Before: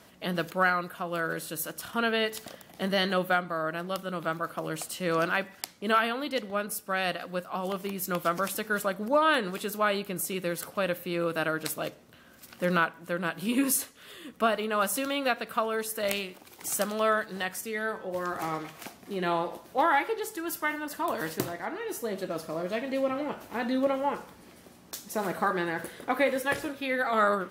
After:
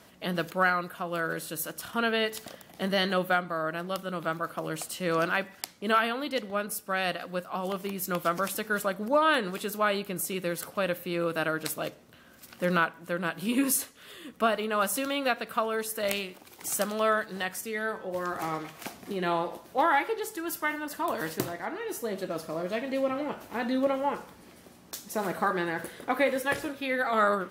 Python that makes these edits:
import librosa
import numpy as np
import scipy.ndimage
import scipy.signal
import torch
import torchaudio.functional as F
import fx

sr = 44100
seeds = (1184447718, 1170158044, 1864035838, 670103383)

y = fx.edit(x, sr, fx.clip_gain(start_s=18.85, length_s=0.27, db=4.0), tone=tone)